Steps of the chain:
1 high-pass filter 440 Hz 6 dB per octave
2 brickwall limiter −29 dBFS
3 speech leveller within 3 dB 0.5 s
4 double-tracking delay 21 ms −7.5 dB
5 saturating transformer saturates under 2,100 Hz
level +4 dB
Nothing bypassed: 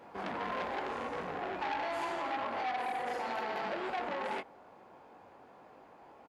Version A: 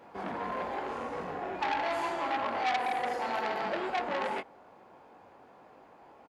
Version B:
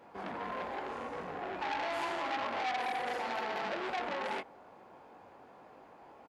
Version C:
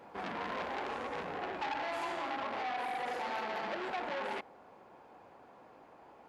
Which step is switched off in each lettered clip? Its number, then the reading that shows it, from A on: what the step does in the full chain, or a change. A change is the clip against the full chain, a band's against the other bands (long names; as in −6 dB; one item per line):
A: 2, average gain reduction 1.5 dB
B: 3, change in momentary loudness spread +17 LU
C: 4, 4 kHz band +2.5 dB